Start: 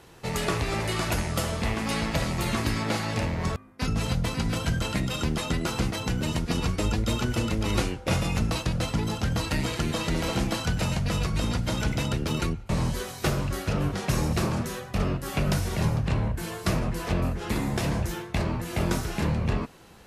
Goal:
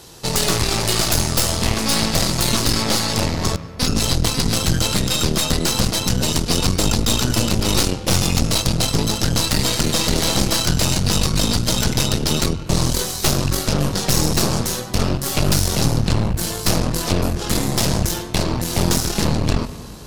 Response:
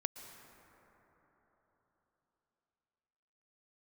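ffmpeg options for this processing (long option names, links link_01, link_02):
-filter_complex "[0:a]highshelf=frequency=3200:width_type=q:width=1.5:gain=13,asplit=2[link_01][link_02];[1:a]atrim=start_sample=2205,asetrate=57330,aresample=44100,lowpass=3500[link_03];[link_02][link_03]afir=irnorm=-1:irlink=0,volume=0dB[link_04];[link_01][link_04]amix=inputs=2:normalize=0,aeval=exprs='0.75*(cos(1*acos(clip(val(0)/0.75,-1,1)))-cos(1*PI/2))+0.335*(cos(3*acos(clip(val(0)/0.75,-1,1)))-cos(3*PI/2))+0.376*(cos(5*acos(clip(val(0)/0.75,-1,1)))-cos(5*PI/2))+0.211*(cos(8*acos(clip(val(0)/0.75,-1,1)))-cos(8*PI/2))':channel_layout=same,volume=-4dB"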